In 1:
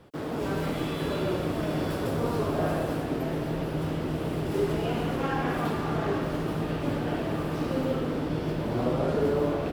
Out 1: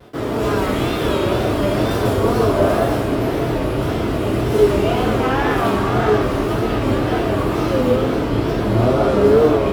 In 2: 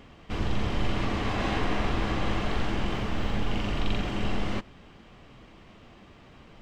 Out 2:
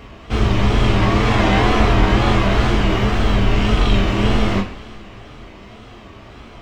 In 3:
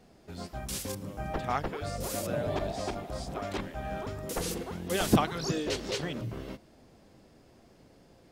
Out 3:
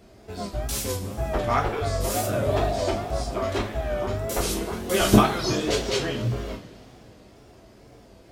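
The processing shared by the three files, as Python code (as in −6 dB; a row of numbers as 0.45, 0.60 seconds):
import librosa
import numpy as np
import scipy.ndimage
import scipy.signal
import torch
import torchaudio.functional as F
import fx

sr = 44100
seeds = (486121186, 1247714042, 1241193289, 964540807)

y = fx.rev_double_slope(x, sr, seeds[0], early_s=0.32, late_s=3.0, knee_db=-22, drr_db=-2.0)
y = fx.wow_flutter(y, sr, seeds[1], rate_hz=2.1, depth_cents=96.0)
y = librosa.util.normalize(y) * 10.0 ** (-2 / 20.0)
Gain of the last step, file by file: +7.5, +8.5, +4.0 decibels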